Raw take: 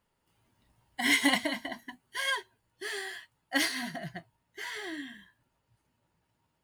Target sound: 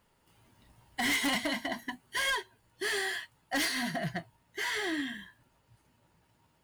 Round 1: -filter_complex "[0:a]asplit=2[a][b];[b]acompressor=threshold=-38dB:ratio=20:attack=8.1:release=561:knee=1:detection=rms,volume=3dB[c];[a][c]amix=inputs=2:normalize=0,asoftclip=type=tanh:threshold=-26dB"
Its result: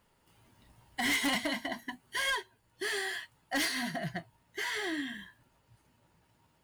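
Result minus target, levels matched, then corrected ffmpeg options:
compressor: peak gain reduction +6.5 dB
-filter_complex "[0:a]asplit=2[a][b];[b]acompressor=threshold=-31dB:ratio=20:attack=8.1:release=561:knee=1:detection=rms,volume=3dB[c];[a][c]amix=inputs=2:normalize=0,asoftclip=type=tanh:threshold=-26dB"

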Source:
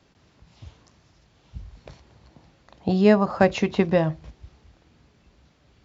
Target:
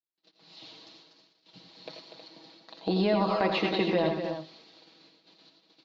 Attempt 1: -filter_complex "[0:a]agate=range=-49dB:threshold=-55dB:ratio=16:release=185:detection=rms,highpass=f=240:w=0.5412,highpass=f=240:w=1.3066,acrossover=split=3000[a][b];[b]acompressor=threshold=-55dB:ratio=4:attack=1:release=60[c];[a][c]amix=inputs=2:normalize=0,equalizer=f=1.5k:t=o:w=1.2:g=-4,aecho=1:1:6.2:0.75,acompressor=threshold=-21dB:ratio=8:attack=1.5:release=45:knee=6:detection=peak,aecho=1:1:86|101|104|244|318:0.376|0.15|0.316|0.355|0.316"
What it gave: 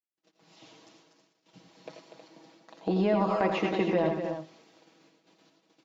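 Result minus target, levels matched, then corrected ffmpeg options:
4000 Hz band -8.0 dB
-filter_complex "[0:a]agate=range=-49dB:threshold=-55dB:ratio=16:release=185:detection=rms,highpass=f=240:w=0.5412,highpass=f=240:w=1.3066,acrossover=split=3000[a][b];[b]acompressor=threshold=-55dB:ratio=4:attack=1:release=60[c];[a][c]amix=inputs=2:normalize=0,lowpass=f=4.2k:t=q:w=5.1,equalizer=f=1.5k:t=o:w=1.2:g=-4,aecho=1:1:6.2:0.75,acompressor=threshold=-21dB:ratio=8:attack=1.5:release=45:knee=6:detection=peak,aecho=1:1:86|101|104|244|318:0.376|0.15|0.316|0.355|0.316"

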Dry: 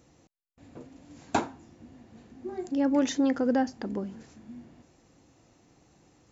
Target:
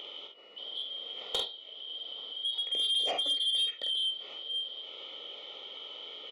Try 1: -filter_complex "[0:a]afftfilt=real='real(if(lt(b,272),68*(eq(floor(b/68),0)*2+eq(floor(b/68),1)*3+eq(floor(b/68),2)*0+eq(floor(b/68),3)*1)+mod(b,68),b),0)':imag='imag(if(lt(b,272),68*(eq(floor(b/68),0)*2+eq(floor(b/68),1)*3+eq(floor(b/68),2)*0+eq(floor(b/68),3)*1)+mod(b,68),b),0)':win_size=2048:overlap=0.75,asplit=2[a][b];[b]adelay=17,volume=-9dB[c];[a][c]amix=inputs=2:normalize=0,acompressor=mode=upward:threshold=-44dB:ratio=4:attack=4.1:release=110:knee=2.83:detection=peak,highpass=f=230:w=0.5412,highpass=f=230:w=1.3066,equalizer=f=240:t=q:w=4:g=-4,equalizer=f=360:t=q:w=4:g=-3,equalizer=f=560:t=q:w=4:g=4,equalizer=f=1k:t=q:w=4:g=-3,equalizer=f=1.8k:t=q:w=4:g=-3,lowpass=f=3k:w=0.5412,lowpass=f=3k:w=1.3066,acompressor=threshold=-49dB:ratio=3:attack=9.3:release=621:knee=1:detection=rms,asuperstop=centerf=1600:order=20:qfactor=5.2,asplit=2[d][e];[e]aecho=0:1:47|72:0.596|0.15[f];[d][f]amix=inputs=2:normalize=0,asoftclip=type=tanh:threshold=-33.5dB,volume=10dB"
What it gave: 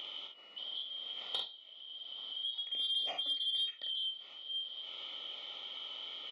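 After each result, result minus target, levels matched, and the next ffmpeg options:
compressor: peak gain reduction +7 dB; 500 Hz band -6.0 dB
-filter_complex "[0:a]afftfilt=real='real(if(lt(b,272),68*(eq(floor(b/68),0)*2+eq(floor(b/68),1)*3+eq(floor(b/68),2)*0+eq(floor(b/68),3)*1)+mod(b,68),b),0)':imag='imag(if(lt(b,272),68*(eq(floor(b/68),0)*2+eq(floor(b/68),1)*3+eq(floor(b/68),2)*0+eq(floor(b/68),3)*1)+mod(b,68),b),0)':win_size=2048:overlap=0.75,asplit=2[a][b];[b]adelay=17,volume=-9dB[c];[a][c]amix=inputs=2:normalize=0,acompressor=mode=upward:threshold=-44dB:ratio=4:attack=4.1:release=110:knee=2.83:detection=peak,highpass=f=230:w=0.5412,highpass=f=230:w=1.3066,equalizer=f=240:t=q:w=4:g=-4,equalizer=f=360:t=q:w=4:g=-3,equalizer=f=560:t=q:w=4:g=4,equalizer=f=1k:t=q:w=4:g=-3,equalizer=f=1.8k:t=q:w=4:g=-3,lowpass=f=3k:w=0.5412,lowpass=f=3k:w=1.3066,acompressor=threshold=-38.5dB:ratio=3:attack=9.3:release=621:knee=1:detection=rms,asuperstop=centerf=1600:order=20:qfactor=5.2,asplit=2[d][e];[e]aecho=0:1:47|72:0.596|0.15[f];[d][f]amix=inputs=2:normalize=0,asoftclip=type=tanh:threshold=-33.5dB,volume=10dB"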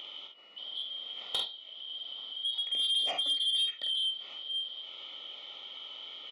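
500 Hz band -6.5 dB
-filter_complex "[0:a]afftfilt=real='real(if(lt(b,272),68*(eq(floor(b/68),0)*2+eq(floor(b/68),1)*3+eq(floor(b/68),2)*0+eq(floor(b/68),3)*1)+mod(b,68),b),0)':imag='imag(if(lt(b,272),68*(eq(floor(b/68),0)*2+eq(floor(b/68),1)*3+eq(floor(b/68),2)*0+eq(floor(b/68),3)*1)+mod(b,68),b),0)':win_size=2048:overlap=0.75,asplit=2[a][b];[b]adelay=17,volume=-9dB[c];[a][c]amix=inputs=2:normalize=0,acompressor=mode=upward:threshold=-44dB:ratio=4:attack=4.1:release=110:knee=2.83:detection=peak,highpass=f=230:w=0.5412,highpass=f=230:w=1.3066,equalizer=f=240:t=q:w=4:g=-4,equalizer=f=360:t=q:w=4:g=-3,equalizer=f=560:t=q:w=4:g=4,equalizer=f=1k:t=q:w=4:g=-3,equalizer=f=1.8k:t=q:w=4:g=-3,lowpass=f=3k:w=0.5412,lowpass=f=3k:w=1.3066,acompressor=threshold=-38.5dB:ratio=3:attack=9.3:release=621:knee=1:detection=rms,asuperstop=centerf=1600:order=20:qfactor=5.2,equalizer=f=450:t=o:w=0.83:g=12,asplit=2[d][e];[e]aecho=0:1:47|72:0.596|0.15[f];[d][f]amix=inputs=2:normalize=0,asoftclip=type=tanh:threshold=-33.5dB,volume=10dB"

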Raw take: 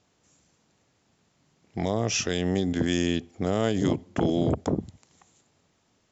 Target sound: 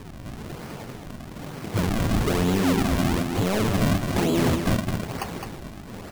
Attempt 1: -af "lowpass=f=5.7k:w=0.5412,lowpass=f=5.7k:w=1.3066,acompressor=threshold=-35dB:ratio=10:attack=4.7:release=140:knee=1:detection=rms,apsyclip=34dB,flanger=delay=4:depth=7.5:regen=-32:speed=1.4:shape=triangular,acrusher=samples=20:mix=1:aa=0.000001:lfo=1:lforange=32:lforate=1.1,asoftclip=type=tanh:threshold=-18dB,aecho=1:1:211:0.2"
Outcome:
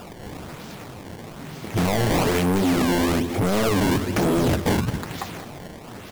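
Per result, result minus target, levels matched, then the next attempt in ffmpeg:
compressor: peak gain reduction -7.5 dB; echo-to-direct -8 dB; decimation with a swept rate: distortion -8 dB
-af "lowpass=f=5.7k:w=0.5412,lowpass=f=5.7k:w=1.3066,acompressor=threshold=-43.5dB:ratio=10:attack=4.7:release=140:knee=1:detection=rms,apsyclip=34dB,flanger=delay=4:depth=7.5:regen=-32:speed=1.4:shape=triangular,acrusher=samples=20:mix=1:aa=0.000001:lfo=1:lforange=32:lforate=1.1,asoftclip=type=tanh:threshold=-18dB,aecho=1:1:211:0.2"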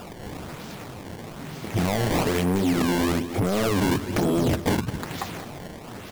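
decimation with a swept rate: distortion -8 dB; echo-to-direct -8 dB
-af "lowpass=f=5.7k:w=0.5412,lowpass=f=5.7k:w=1.3066,acompressor=threshold=-43.5dB:ratio=10:attack=4.7:release=140:knee=1:detection=rms,apsyclip=34dB,flanger=delay=4:depth=7.5:regen=-32:speed=1.4:shape=triangular,acrusher=samples=58:mix=1:aa=0.000001:lfo=1:lforange=92.8:lforate=1.1,asoftclip=type=tanh:threshold=-18dB,aecho=1:1:211:0.2"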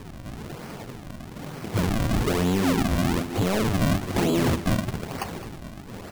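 echo-to-direct -8 dB
-af "lowpass=f=5.7k:w=0.5412,lowpass=f=5.7k:w=1.3066,acompressor=threshold=-43.5dB:ratio=10:attack=4.7:release=140:knee=1:detection=rms,apsyclip=34dB,flanger=delay=4:depth=7.5:regen=-32:speed=1.4:shape=triangular,acrusher=samples=58:mix=1:aa=0.000001:lfo=1:lforange=92.8:lforate=1.1,asoftclip=type=tanh:threshold=-18dB,aecho=1:1:211:0.501"

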